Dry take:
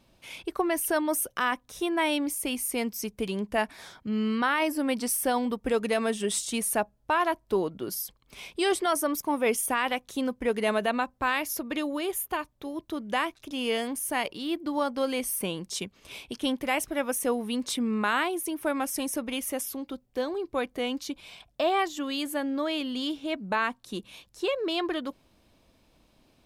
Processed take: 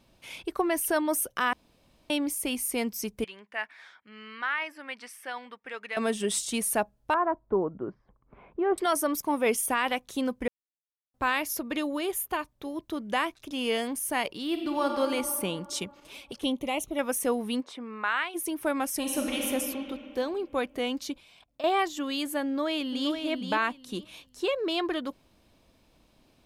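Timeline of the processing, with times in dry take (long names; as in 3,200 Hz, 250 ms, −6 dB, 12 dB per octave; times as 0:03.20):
0:01.53–0:02.10: fill with room tone
0:03.24–0:05.97: resonant band-pass 1,900 Hz, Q 1.7
0:07.14–0:08.78: low-pass filter 1,400 Hz 24 dB per octave
0:10.48–0:11.14: silence
0:14.47–0:14.91: thrown reverb, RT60 2.7 s, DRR 2 dB
0:16.00–0:16.99: flanger swept by the level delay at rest 8.7 ms, full sweep at −27.5 dBFS
0:17.60–0:18.34: resonant band-pass 690 Hz → 2,500 Hz, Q 0.96
0:18.99–0:19.45: thrown reverb, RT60 2.9 s, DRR −1 dB
0:21.18–0:21.64: output level in coarse steps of 19 dB
0:22.45–0:23.10: delay throw 470 ms, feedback 20%, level −6.5 dB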